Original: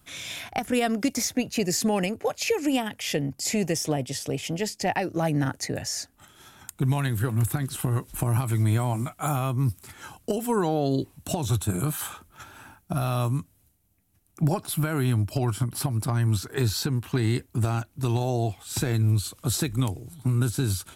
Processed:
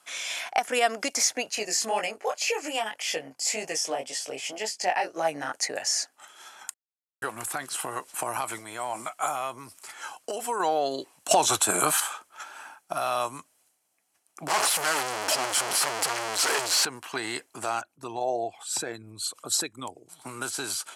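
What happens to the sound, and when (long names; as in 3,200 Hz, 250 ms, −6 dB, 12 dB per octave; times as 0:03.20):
0:01.55–0:05.53: chorus effect 1.9 Hz, delay 18 ms, depth 5.2 ms
0:06.74–0:07.22: silence
0:08.58–0:10.60: downward compressor, threshold −24 dBFS
0:11.31–0:12.00: clip gain +8.5 dB
0:14.48–0:16.85: sign of each sample alone
0:17.81–0:20.09: spectral envelope exaggerated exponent 1.5
whole clip: Chebyshev band-pass filter 700–8,700 Hz, order 2; notch filter 3,700 Hz, Q 12; level +5 dB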